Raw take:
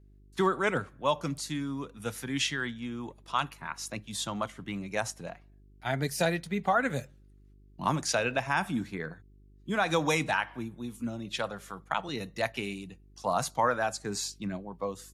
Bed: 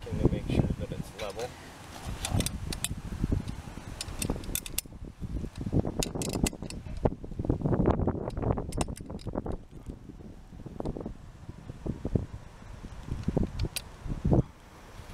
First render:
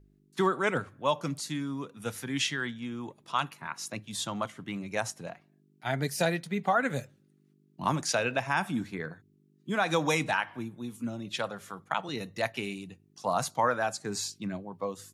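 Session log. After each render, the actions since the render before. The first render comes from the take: de-hum 50 Hz, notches 2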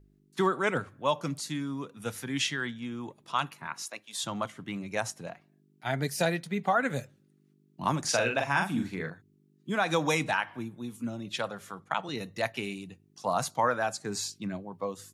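3.82–4.24 HPF 570 Hz; 8–9.1 doubler 43 ms -4 dB; 11.7–12.15 LPF 11000 Hz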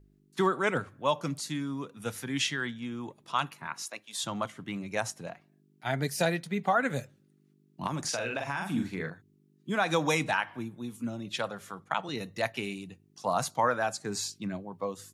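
7.86–8.69 compressor, threshold -28 dBFS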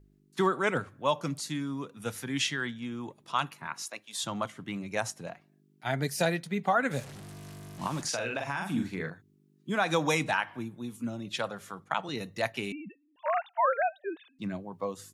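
6.91–8.03 delta modulation 64 kbps, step -39 dBFS; 12.72–14.39 sine-wave speech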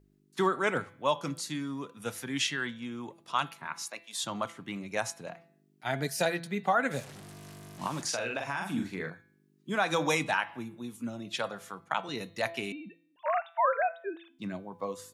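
low shelf 130 Hz -8 dB; de-hum 167.8 Hz, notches 27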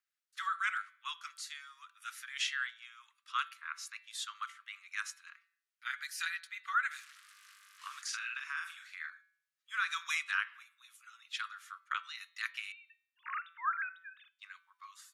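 steep high-pass 1200 Hz 72 dB/oct; tilt -2.5 dB/oct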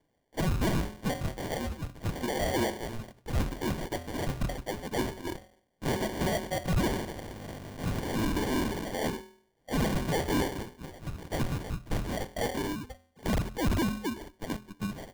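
overdrive pedal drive 29 dB, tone 2300 Hz, clips at -18.5 dBFS; sample-rate reducer 1300 Hz, jitter 0%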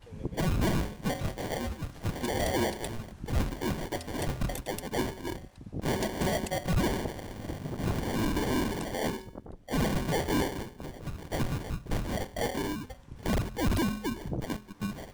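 add bed -10.5 dB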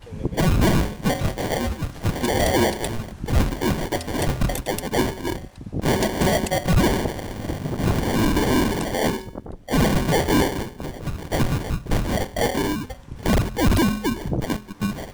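gain +9.5 dB

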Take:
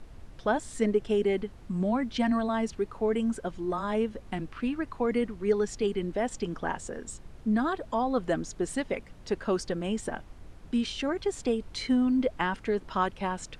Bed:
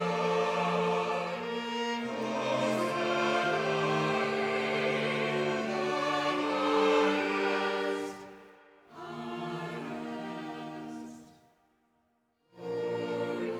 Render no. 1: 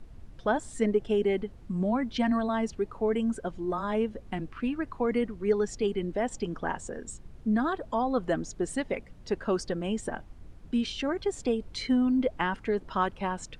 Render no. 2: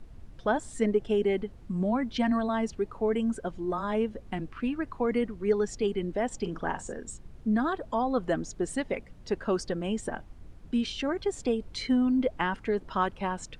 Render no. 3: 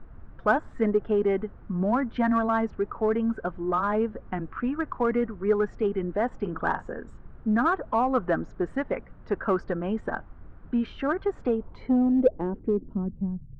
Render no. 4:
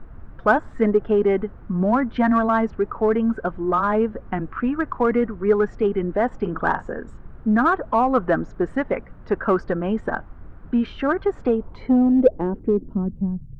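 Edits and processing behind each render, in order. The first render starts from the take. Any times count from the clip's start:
denoiser 6 dB, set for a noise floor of -49 dBFS
6.36–6.95 doubler 43 ms -11 dB
low-pass sweep 1400 Hz -> 130 Hz, 11.44–13.51; in parallel at -12 dB: hard clip -23.5 dBFS, distortion -11 dB
gain +5.5 dB

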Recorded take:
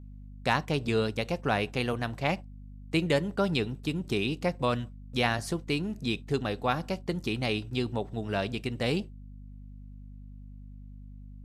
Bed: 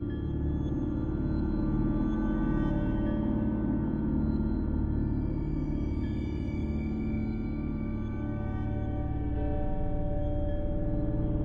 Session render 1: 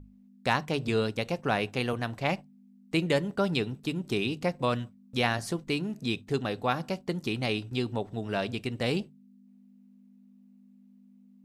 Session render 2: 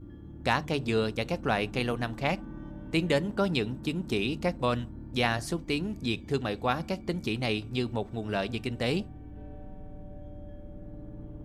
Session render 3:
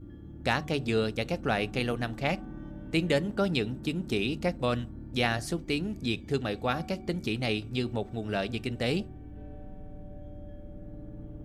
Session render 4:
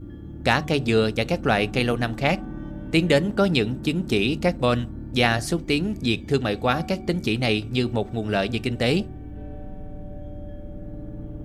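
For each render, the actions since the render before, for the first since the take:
notches 50/100/150 Hz
add bed -13.5 dB
bell 1000 Hz -7 dB 0.29 oct; de-hum 373.7 Hz, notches 3
gain +7.5 dB

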